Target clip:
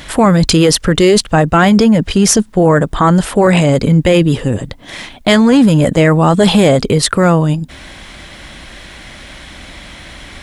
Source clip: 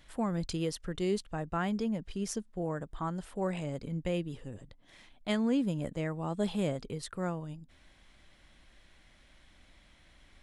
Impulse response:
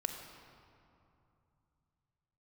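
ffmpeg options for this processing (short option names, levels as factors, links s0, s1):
-af "apsyclip=44.7,highpass=f=60:p=1,volume=0.668"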